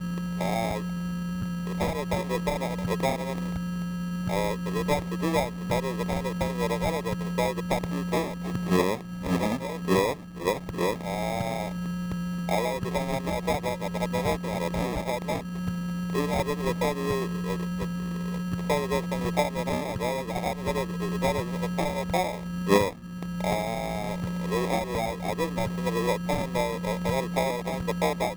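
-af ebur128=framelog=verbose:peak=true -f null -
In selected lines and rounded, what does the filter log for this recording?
Integrated loudness:
  I:         -28.6 LUFS
  Threshold: -38.6 LUFS
Loudness range:
  LRA:         1.6 LU
  Threshold: -48.6 LUFS
  LRA low:   -29.4 LUFS
  LRA high:  -27.7 LUFS
True peak:
  Peak:       -9.4 dBFS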